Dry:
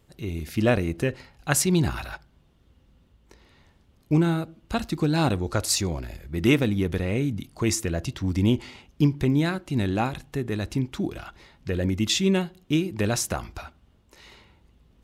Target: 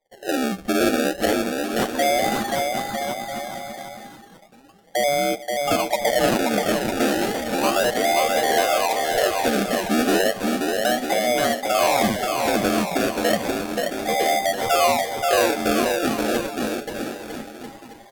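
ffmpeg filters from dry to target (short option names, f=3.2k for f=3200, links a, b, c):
-af "afftfilt=real='real(if(between(b,1,1008),(2*floor((b-1)/48)+1)*48-b,b),0)':imag='imag(if(between(b,1,1008),(2*floor((b-1)/48)+1)*48-b,b),0)*if(between(b,1,1008),-1,1)':win_size=2048:overlap=0.75,lowpass=1.4k,agate=range=-22dB:threshold=-58dB:ratio=16:detection=peak,equalizer=f=73:w=1.3:g=-12,aecho=1:1:7.3:0.48,adynamicequalizer=threshold=0.0112:dfrequency=270:dqfactor=0.91:tfrequency=270:tqfactor=0.91:attack=5:release=100:ratio=0.375:range=3.5:mode=boostabove:tftype=bell,acontrast=47,alimiter=limit=-13.5dB:level=0:latency=1:release=102,acrusher=samples=25:mix=1:aa=0.000001:lfo=1:lforange=25:lforate=0.4,asetrate=36603,aresample=44100,aecho=1:1:530|954|1293|1565|1782:0.631|0.398|0.251|0.158|0.1"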